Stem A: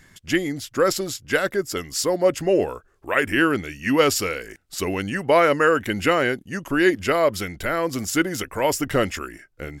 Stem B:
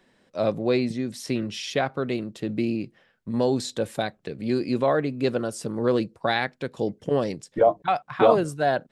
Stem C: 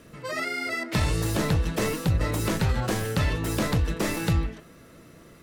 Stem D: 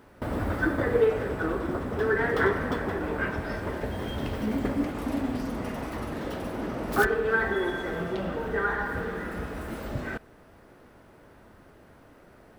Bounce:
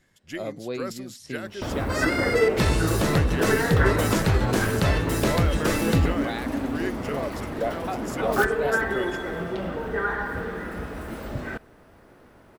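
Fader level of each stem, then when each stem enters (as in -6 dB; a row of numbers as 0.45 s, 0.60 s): -14.0 dB, -9.5 dB, +2.0 dB, +1.0 dB; 0.00 s, 0.00 s, 1.65 s, 1.40 s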